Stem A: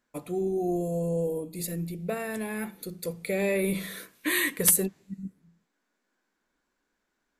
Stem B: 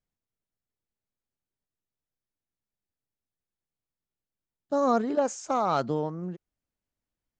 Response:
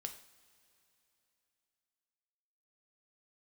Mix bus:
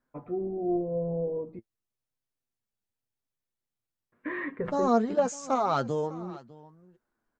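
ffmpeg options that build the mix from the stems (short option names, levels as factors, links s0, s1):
-filter_complex "[0:a]lowpass=f=1600:w=0.5412,lowpass=f=1600:w=1.3066,volume=1.26,asplit=3[s0][s1][s2];[s0]atrim=end=1.59,asetpts=PTS-STARTPTS,afade=t=out:st=1.586:d=0.004:c=hsin[s3];[s1]atrim=start=1.59:end=4.12,asetpts=PTS-STARTPTS,volume=0[s4];[s2]atrim=start=4.12,asetpts=PTS-STARTPTS,afade=t=in:d=0.004:c=hsin[s5];[s3][s4][s5]concat=n=3:v=0:a=1[s6];[1:a]volume=1.41,asplit=2[s7][s8];[s8]volume=0.112,aecho=0:1:602:1[s9];[s6][s7][s9]amix=inputs=3:normalize=0,flanger=delay=7.3:depth=1.8:regen=33:speed=0.89:shape=triangular"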